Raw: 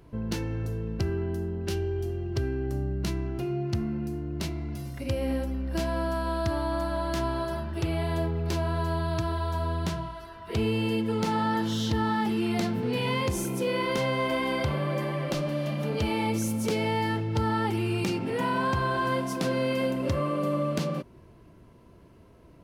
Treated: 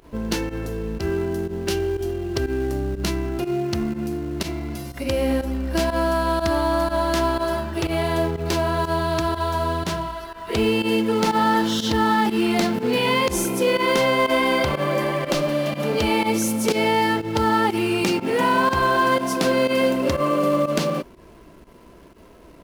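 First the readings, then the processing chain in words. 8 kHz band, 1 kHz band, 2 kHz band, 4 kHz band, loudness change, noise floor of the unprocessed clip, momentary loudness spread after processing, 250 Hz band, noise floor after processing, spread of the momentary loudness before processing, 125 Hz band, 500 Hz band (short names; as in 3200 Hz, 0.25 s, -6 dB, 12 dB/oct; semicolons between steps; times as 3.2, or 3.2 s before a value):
+9.5 dB, +9.0 dB, +9.5 dB, +9.5 dB, +7.0 dB, -53 dBFS, 8 LU, +6.5 dB, -47 dBFS, 6 LU, +0.5 dB, +8.5 dB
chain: bell 110 Hz -13 dB 1.2 oct; in parallel at -11.5 dB: companded quantiser 4-bit; on the sum: pump 122 bpm, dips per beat 1, -15 dB, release 78 ms; gain +7.5 dB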